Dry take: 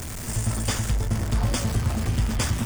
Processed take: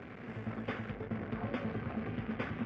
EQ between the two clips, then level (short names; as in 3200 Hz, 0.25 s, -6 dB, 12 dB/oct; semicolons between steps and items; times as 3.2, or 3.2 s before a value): speaker cabinet 280–2000 Hz, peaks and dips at 330 Hz -6 dB, 620 Hz -8 dB, 890 Hz -9 dB, 1300 Hz -6 dB, 1800 Hz -6 dB; bell 990 Hz -4.5 dB 0.24 oct; -1.0 dB